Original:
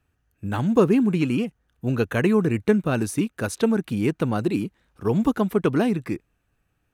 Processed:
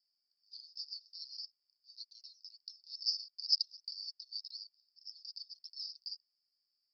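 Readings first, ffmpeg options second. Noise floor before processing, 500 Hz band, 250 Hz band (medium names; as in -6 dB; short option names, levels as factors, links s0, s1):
-73 dBFS, under -40 dB, under -40 dB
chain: -af "asuperpass=centerf=4900:order=8:qfactor=6,volume=6.68"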